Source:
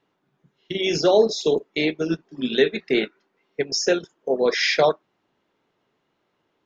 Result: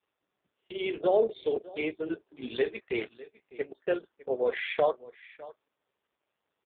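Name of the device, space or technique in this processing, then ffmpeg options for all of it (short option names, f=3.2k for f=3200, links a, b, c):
satellite phone: -filter_complex "[0:a]asettb=1/sr,asplit=3[a][b][c];[a]atrim=end=1.944[d];[b]atrim=start=1.94:end=3.8,asetpts=PTS-STARTPTS,afade=t=in:d=0.004:c=qsin,afade=t=out:st=1.856:d=0.004:c=qsin,lowpass=f=5.5k:w=0.5412,lowpass=f=5.5k:w=1.3066[e];[c]atrim=start=3.796[f];[d][e]acrossfade=d=0.004:c1=hsin:c2=qsin[g];[g][f]acrossfade=d=0.004:c1=qsin:c2=hsin,highpass=360,lowpass=3.3k,aecho=1:1:604:0.106,volume=-5.5dB" -ar 8000 -c:a libopencore_amrnb -b:a 4750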